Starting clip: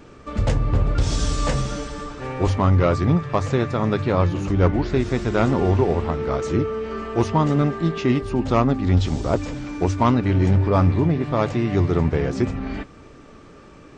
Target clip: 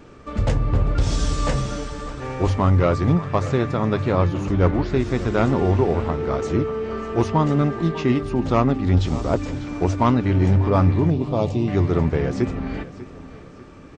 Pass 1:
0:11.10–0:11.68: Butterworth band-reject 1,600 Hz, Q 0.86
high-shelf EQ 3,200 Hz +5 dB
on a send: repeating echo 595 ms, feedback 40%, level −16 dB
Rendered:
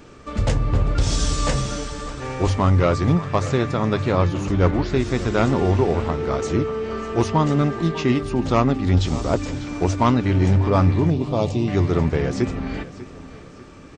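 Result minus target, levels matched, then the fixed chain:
8,000 Hz band +6.0 dB
0:11.10–0:11.68: Butterworth band-reject 1,600 Hz, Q 0.86
high-shelf EQ 3,200 Hz −2.5 dB
on a send: repeating echo 595 ms, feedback 40%, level −16 dB

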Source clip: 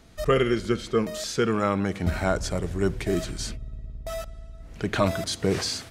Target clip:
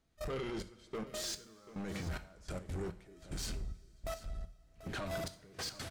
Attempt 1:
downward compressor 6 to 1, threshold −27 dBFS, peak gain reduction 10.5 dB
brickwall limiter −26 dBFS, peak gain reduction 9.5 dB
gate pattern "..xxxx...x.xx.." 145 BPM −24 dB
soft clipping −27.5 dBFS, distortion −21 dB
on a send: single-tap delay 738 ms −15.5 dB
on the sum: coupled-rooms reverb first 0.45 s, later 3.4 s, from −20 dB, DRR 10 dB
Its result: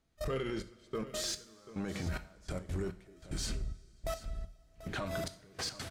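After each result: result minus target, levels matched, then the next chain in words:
downward compressor: peak gain reduction +10.5 dB; soft clipping: distortion −10 dB
brickwall limiter −26 dBFS, peak gain reduction 16.5 dB
gate pattern "..xxxx...x.xx.." 145 BPM −24 dB
soft clipping −27.5 dBFS, distortion −20 dB
on a send: single-tap delay 738 ms −15.5 dB
on the sum: coupled-rooms reverb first 0.45 s, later 3.4 s, from −20 dB, DRR 10 dB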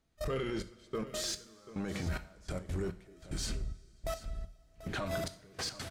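soft clipping: distortion −10 dB
brickwall limiter −26 dBFS, peak gain reduction 16.5 dB
gate pattern "..xxxx...x.xx.." 145 BPM −24 dB
soft clipping −36 dBFS, distortion −10 dB
on a send: single-tap delay 738 ms −15.5 dB
on the sum: coupled-rooms reverb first 0.45 s, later 3.4 s, from −20 dB, DRR 10 dB

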